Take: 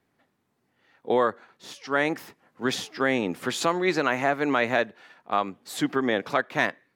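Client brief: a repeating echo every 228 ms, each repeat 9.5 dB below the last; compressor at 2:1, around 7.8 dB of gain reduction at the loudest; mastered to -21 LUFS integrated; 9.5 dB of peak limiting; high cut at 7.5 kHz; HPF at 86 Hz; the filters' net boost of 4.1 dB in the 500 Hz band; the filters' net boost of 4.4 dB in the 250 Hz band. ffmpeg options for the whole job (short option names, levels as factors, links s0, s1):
-af "highpass=86,lowpass=7500,equalizer=f=250:t=o:g=4,equalizer=f=500:t=o:g=4,acompressor=threshold=0.0316:ratio=2,alimiter=limit=0.0708:level=0:latency=1,aecho=1:1:228|456|684|912:0.335|0.111|0.0365|0.012,volume=4.73"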